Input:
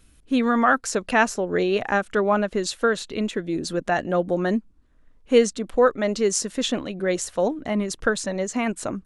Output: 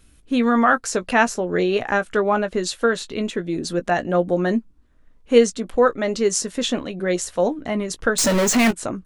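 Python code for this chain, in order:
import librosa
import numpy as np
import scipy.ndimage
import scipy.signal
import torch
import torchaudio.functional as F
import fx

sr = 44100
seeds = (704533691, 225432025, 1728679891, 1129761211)

y = fx.power_curve(x, sr, exponent=0.35, at=(8.18, 8.71))
y = fx.doubler(y, sr, ms=17.0, db=-11)
y = y * librosa.db_to_amplitude(1.5)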